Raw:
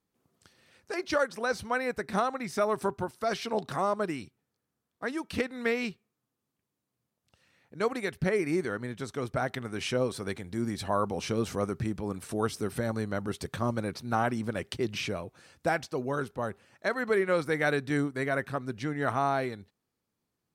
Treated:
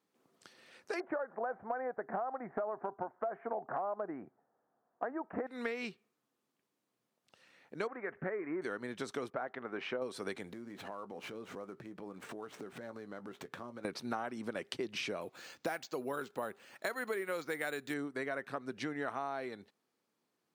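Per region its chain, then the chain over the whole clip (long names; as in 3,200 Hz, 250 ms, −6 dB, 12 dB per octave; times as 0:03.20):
0:01.00–0:05.47: Butterworth low-pass 1,800 Hz 48 dB per octave + parametric band 720 Hz +13.5 dB + downward compressor 3 to 1, threshold −22 dBFS
0:07.87–0:08.62: mu-law and A-law mismatch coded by mu + Butterworth low-pass 1,900 Hz + low-shelf EQ 350 Hz −9 dB
0:09.30–0:10.02: low-pass filter 1,600 Hz + low-shelf EQ 260 Hz −11.5 dB
0:10.52–0:13.85: running median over 9 samples + double-tracking delay 16 ms −13 dB + downward compressor 20 to 1, threshold −42 dBFS
0:15.21–0:17.94: high-shelf EQ 3,200 Hz +11 dB + bad sample-rate conversion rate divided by 4×, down filtered, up hold
whole clip: high-pass filter 260 Hz 12 dB per octave; high-shelf EQ 7,700 Hz −8 dB; downward compressor 6 to 1, threshold −39 dBFS; level +3.5 dB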